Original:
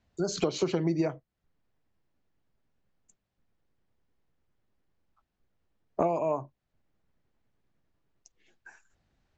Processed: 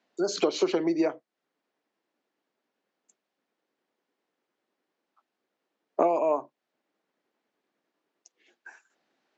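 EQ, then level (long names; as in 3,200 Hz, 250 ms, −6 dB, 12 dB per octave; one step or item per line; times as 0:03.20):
high-pass filter 270 Hz 24 dB per octave
low-pass filter 6,400 Hz
+4.0 dB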